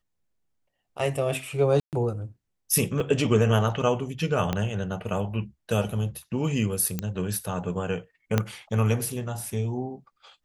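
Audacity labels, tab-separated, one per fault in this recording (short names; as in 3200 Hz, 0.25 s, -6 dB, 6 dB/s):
1.800000	1.930000	gap 0.128 s
3.000000	3.000000	gap 2.5 ms
4.530000	4.530000	pop -12 dBFS
6.990000	6.990000	pop -14 dBFS
8.380000	8.380000	pop -8 dBFS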